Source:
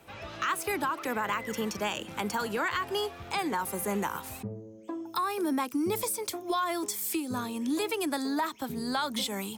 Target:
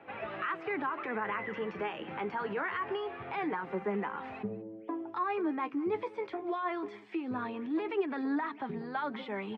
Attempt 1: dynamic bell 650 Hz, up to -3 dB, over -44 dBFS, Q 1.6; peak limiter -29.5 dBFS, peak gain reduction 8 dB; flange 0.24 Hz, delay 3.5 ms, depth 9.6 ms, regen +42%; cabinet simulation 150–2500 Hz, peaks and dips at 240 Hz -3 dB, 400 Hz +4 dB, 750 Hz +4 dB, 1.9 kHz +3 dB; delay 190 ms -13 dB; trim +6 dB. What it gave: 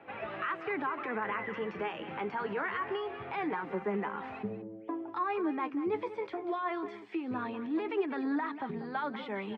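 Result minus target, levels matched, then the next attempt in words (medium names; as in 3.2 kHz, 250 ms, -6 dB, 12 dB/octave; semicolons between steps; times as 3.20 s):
echo-to-direct +8 dB
dynamic bell 650 Hz, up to -3 dB, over -44 dBFS, Q 1.6; peak limiter -29.5 dBFS, peak gain reduction 8 dB; flange 0.24 Hz, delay 3.5 ms, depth 9.6 ms, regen +42%; cabinet simulation 150–2500 Hz, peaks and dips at 240 Hz -3 dB, 400 Hz +4 dB, 750 Hz +4 dB, 1.9 kHz +3 dB; delay 190 ms -21 dB; trim +6 dB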